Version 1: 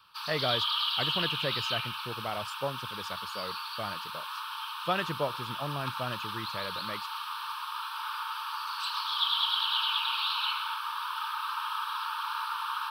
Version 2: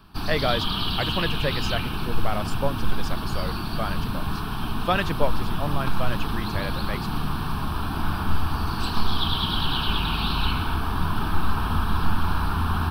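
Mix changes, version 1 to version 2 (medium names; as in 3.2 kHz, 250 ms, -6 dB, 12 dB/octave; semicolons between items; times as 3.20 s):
speech +6.5 dB; background: remove rippled Chebyshev high-pass 870 Hz, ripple 6 dB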